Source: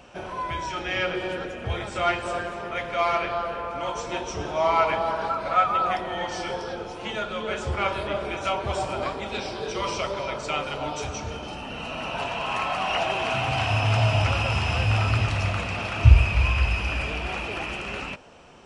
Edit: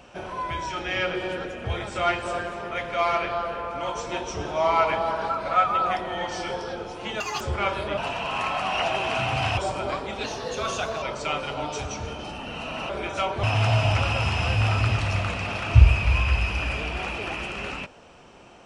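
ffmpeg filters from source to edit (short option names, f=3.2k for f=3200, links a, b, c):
-filter_complex "[0:a]asplit=9[a][b][c][d][e][f][g][h][i];[a]atrim=end=7.204[j];[b]atrim=start=7.2:end=7.6,asetpts=PTS-STARTPTS,asetrate=85554,aresample=44100[k];[c]atrim=start=7.596:end=8.172[l];[d]atrim=start=12.128:end=13.732[m];[e]atrim=start=8.708:end=9.374[n];[f]atrim=start=9.37:end=10.26,asetpts=PTS-STARTPTS,asetrate=49833,aresample=44100[o];[g]atrim=start=10.256:end=12.132[p];[h]atrim=start=8.168:end=8.712[q];[i]atrim=start=13.728[r];[j][k]acrossfade=d=0.004:c1=hsin:c2=hsin[s];[s][l]acrossfade=d=0.004:c1=hsin:c2=hsin[t];[t][m]acrossfade=d=0.004:c1=hsin:c2=hsin[u];[u][n]acrossfade=d=0.004:c1=hsin:c2=hsin[v];[v][o]acrossfade=d=0.004:c1=hsin:c2=hsin[w];[w][p]acrossfade=d=0.004:c1=hsin:c2=hsin[x];[x][q]acrossfade=d=0.004:c1=hsin:c2=hsin[y];[y][r]acrossfade=d=0.004:c1=hsin:c2=hsin"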